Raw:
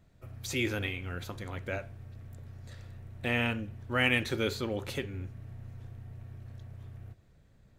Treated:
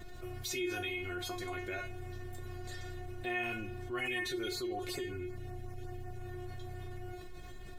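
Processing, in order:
tuned comb filter 360 Hz, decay 0.21 s, harmonics all, mix 100%
0:03.99–0:06.17: auto-filter notch sine 5.4 Hz 940–3,500 Hz
envelope flattener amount 70%
level +2 dB

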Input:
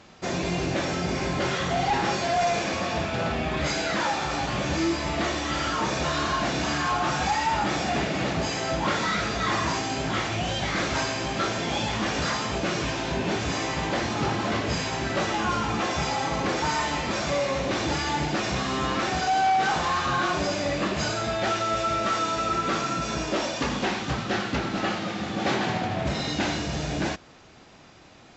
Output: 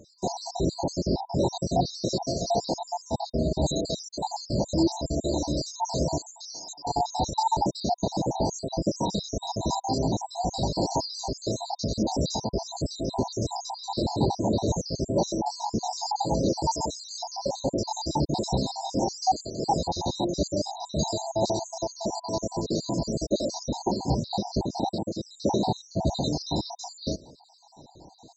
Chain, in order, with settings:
time-frequency cells dropped at random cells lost 64%
0:06.18–0:06.85: first difference
brick-wall band-stop 1,000–3,700 Hz
level +4.5 dB

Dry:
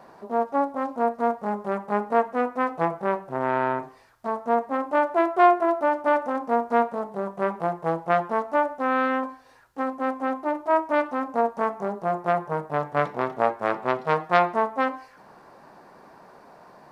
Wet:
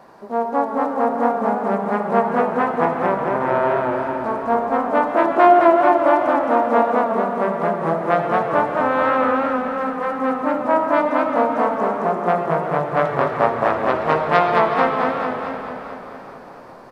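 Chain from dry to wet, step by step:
echo with shifted repeats 370 ms, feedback 55%, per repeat −30 Hz, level −13 dB
comb and all-pass reverb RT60 1.8 s, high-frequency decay 0.8×, pre-delay 30 ms, DRR 5 dB
feedback echo with a swinging delay time 218 ms, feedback 61%, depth 99 cents, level −3.5 dB
level +2.5 dB

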